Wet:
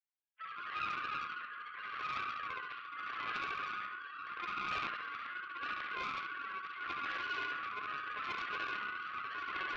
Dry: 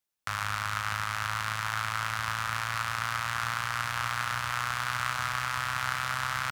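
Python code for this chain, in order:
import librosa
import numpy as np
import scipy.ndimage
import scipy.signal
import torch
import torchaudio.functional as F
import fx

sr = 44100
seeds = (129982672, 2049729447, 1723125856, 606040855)

p1 = fx.sine_speech(x, sr)
p2 = fx.peak_eq(p1, sr, hz=190.0, db=-8.0, octaves=1.5)
p3 = fx.hum_notches(p2, sr, base_hz=50, count=8)
p4 = fx.stretch_vocoder(p3, sr, factor=1.5)
p5 = fx.resonator_bank(p4, sr, root=37, chord='major', decay_s=0.25)
p6 = fx.rotary(p5, sr, hz=0.8)
p7 = p6 + fx.echo_feedback(p6, sr, ms=69, feedback_pct=55, wet_db=-4.0, dry=0)
p8 = fx.doppler_dist(p7, sr, depth_ms=0.5)
y = p8 * librosa.db_to_amplitude(3.5)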